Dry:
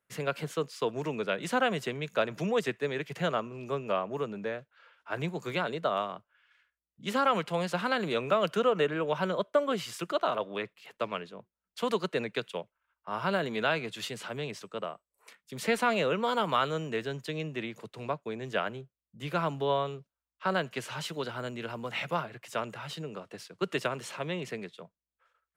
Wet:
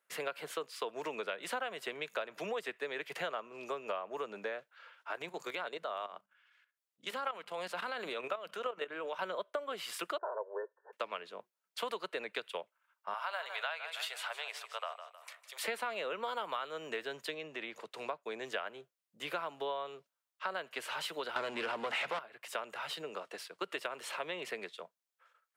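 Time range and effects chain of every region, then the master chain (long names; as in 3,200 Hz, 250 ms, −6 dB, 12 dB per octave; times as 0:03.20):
0:05.11–0:09.22: mains-hum notches 50/100/150/200 Hz + output level in coarse steps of 12 dB
0:10.18–0:10.93: linear-phase brick-wall band-pass 330–1,800 Hz + parametric band 1,300 Hz −14 dB 0.41 octaves + comb filter 2.1 ms, depth 56%
0:13.14–0:15.64: inverse Chebyshev high-pass filter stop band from 250 Hz, stop band 50 dB + repeating echo 156 ms, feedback 42%, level −13 dB
0:17.34–0:17.91: high-shelf EQ 7,700 Hz −10 dB + downward compressor 2 to 1, threshold −39 dBFS
0:21.36–0:22.19: mains-hum notches 50/100/150/200/250 Hz + leveller curve on the samples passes 5 + high-frequency loss of the air 65 metres
whole clip: high-pass filter 520 Hz 12 dB per octave; dynamic equaliser 6,300 Hz, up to −7 dB, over −58 dBFS, Q 1.8; downward compressor 6 to 1, threshold −38 dBFS; level +3 dB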